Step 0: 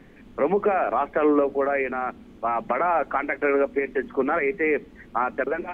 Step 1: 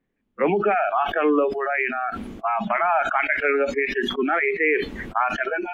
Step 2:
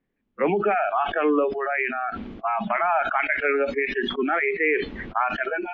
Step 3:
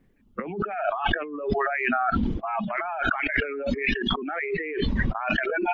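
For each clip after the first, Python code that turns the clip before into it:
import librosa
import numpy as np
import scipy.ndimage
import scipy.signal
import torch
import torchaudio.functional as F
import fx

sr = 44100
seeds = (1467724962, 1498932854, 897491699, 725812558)

y1 = fx.dynamic_eq(x, sr, hz=2600.0, q=0.7, threshold_db=-39.0, ratio=4.0, max_db=6)
y1 = fx.noise_reduce_blind(y1, sr, reduce_db=27)
y1 = fx.sustainer(y1, sr, db_per_s=43.0)
y2 = scipy.signal.sosfilt(scipy.signal.butter(4, 4400.0, 'lowpass', fs=sr, output='sos'), y1)
y2 = y2 * librosa.db_to_amplitude(-1.5)
y3 = fx.dereverb_blind(y2, sr, rt60_s=1.5)
y3 = fx.low_shelf(y3, sr, hz=230.0, db=10.5)
y3 = fx.over_compress(y3, sr, threshold_db=-31.0, ratio=-1.0)
y3 = y3 * librosa.db_to_amplitude(3.5)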